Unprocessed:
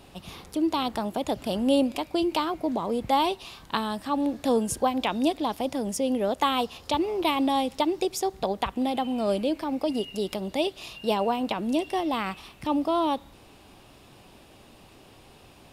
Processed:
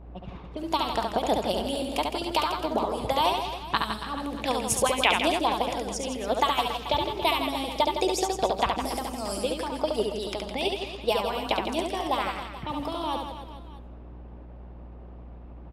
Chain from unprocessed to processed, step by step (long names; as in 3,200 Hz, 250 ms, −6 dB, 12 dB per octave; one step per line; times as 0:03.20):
low-pass that shuts in the quiet parts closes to 850 Hz, open at −24 dBFS
0:08.76–0:09.39: high shelf with overshoot 4,500 Hz +9 dB, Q 3
harmonic and percussive parts rebalanced harmonic −14 dB
0:04.38–0:05.21: parametric band 2,400 Hz +8.5 dB 1 octave
in parallel at −1.5 dB: output level in coarse steps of 15 dB
on the sum: hum with harmonics 60 Hz, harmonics 39, −46 dBFS −9 dB per octave
reverse bouncing-ball delay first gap 70 ms, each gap 1.3×, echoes 5
on a send at −21 dB: convolution reverb RT60 0.75 s, pre-delay 142 ms